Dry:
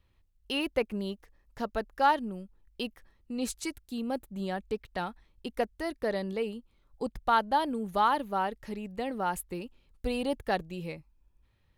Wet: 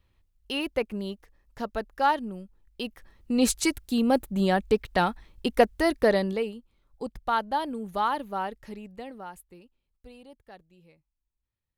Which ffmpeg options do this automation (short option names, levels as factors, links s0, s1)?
-af "volume=3.35,afade=t=in:st=2.83:d=0.52:silence=0.334965,afade=t=out:st=6:d=0.53:silence=0.266073,afade=t=out:st=8.57:d=0.76:silence=0.281838,afade=t=out:st=9.33:d=0.99:silence=0.421697"